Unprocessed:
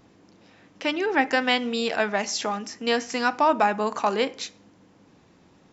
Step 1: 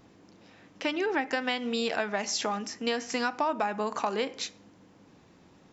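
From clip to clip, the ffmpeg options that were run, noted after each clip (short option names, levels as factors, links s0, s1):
-af "acompressor=threshold=0.0631:ratio=6,volume=0.891"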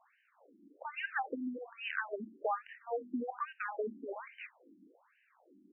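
-af "afftfilt=real='re*between(b*sr/1024,250*pow(2200/250,0.5+0.5*sin(2*PI*1.2*pts/sr))/1.41,250*pow(2200/250,0.5+0.5*sin(2*PI*1.2*pts/sr))*1.41)':imag='im*between(b*sr/1024,250*pow(2200/250,0.5+0.5*sin(2*PI*1.2*pts/sr))/1.41,250*pow(2200/250,0.5+0.5*sin(2*PI*1.2*pts/sr))*1.41)':win_size=1024:overlap=0.75,volume=0.891"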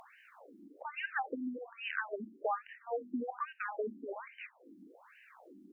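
-af "acompressor=mode=upward:threshold=0.00398:ratio=2.5"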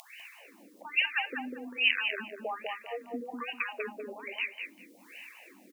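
-filter_complex "[0:a]aexciter=amount=14.7:drive=1.5:freq=2100,asplit=2[s0][s1];[s1]adelay=197,lowpass=f=2100:p=1,volume=0.708,asplit=2[s2][s3];[s3]adelay=197,lowpass=f=2100:p=1,volume=0.25,asplit=2[s4][s5];[s5]adelay=197,lowpass=f=2100:p=1,volume=0.25,asplit=2[s6][s7];[s7]adelay=197,lowpass=f=2100:p=1,volume=0.25[s8];[s0][s2][s4][s6][s8]amix=inputs=5:normalize=0,volume=0.794"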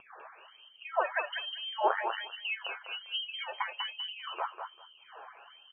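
-af "flanger=delay=7:depth=1.9:regen=46:speed=0.74:shape=sinusoidal,lowpass=f=2900:t=q:w=0.5098,lowpass=f=2900:t=q:w=0.6013,lowpass=f=2900:t=q:w=0.9,lowpass=f=2900:t=q:w=2.563,afreqshift=-3400,volume=1.5"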